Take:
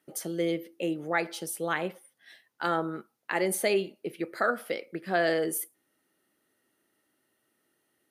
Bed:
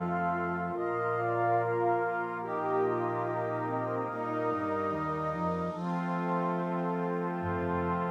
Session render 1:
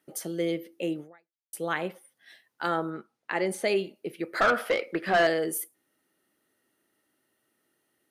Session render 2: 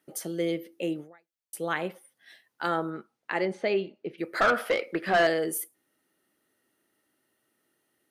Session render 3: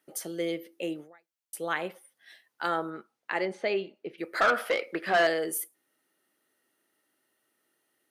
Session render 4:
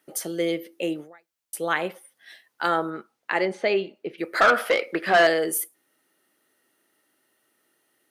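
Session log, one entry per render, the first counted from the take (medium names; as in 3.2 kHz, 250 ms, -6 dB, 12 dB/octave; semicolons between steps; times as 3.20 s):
1.00–1.53 s: fade out exponential; 2.90–3.68 s: distance through air 54 m; 4.34–5.27 s: overdrive pedal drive 20 dB, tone 2.3 kHz, clips at -13.5 dBFS
3.45–4.18 s: distance through air 170 m
bass shelf 230 Hz -10.5 dB
trim +6 dB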